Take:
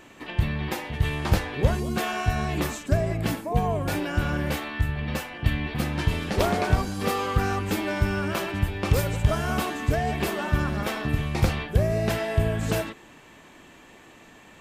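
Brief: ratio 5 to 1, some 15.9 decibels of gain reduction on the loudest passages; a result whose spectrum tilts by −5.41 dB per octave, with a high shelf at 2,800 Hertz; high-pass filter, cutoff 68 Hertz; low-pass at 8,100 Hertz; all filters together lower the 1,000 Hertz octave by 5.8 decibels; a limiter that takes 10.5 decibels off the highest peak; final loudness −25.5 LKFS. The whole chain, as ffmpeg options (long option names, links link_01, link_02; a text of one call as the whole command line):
ffmpeg -i in.wav -af "highpass=68,lowpass=8100,equalizer=frequency=1000:width_type=o:gain=-8,highshelf=frequency=2800:gain=-5,acompressor=threshold=-37dB:ratio=5,volume=18.5dB,alimiter=limit=-16dB:level=0:latency=1" out.wav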